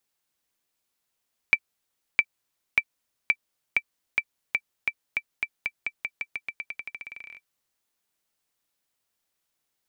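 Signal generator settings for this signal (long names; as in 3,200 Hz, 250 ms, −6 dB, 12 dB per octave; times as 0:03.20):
bouncing ball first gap 0.66 s, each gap 0.89, 2,330 Hz, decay 57 ms −6 dBFS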